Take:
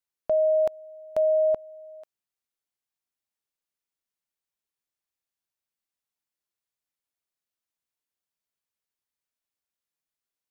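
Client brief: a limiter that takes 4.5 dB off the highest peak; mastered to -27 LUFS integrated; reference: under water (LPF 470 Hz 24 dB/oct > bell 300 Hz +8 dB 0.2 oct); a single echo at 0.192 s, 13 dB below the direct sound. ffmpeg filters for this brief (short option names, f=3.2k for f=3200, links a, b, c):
-af "alimiter=limit=-22.5dB:level=0:latency=1,lowpass=f=470:w=0.5412,lowpass=f=470:w=1.3066,equalizer=f=300:t=o:w=0.2:g=8,aecho=1:1:192:0.224,volume=12dB"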